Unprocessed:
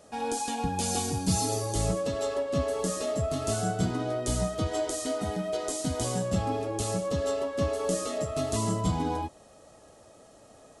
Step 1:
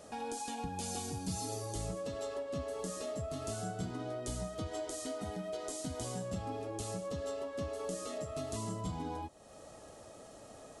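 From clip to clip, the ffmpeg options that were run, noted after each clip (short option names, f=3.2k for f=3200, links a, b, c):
-af "acompressor=threshold=-48dB:ratio=2,volume=1.5dB"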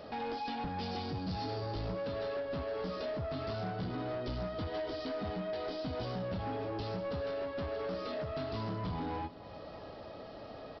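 -af "aresample=11025,asoftclip=type=tanh:threshold=-39dB,aresample=44100,aecho=1:1:312|624|936|1248|1560:0.126|0.0755|0.0453|0.0272|0.0163,volume=6dB"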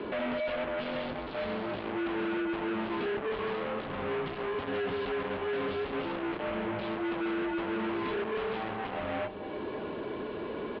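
-filter_complex "[0:a]asplit=2[a][b];[b]aeval=exprs='0.0299*sin(PI/2*3.55*val(0)/0.0299)':c=same,volume=-12dB[c];[a][c]amix=inputs=2:normalize=0,highpass=f=400:t=q:w=0.5412,highpass=f=400:t=q:w=1.307,lowpass=f=3.4k:t=q:w=0.5176,lowpass=f=3.4k:t=q:w=0.7071,lowpass=f=3.4k:t=q:w=1.932,afreqshift=-220,volume=5.5dB"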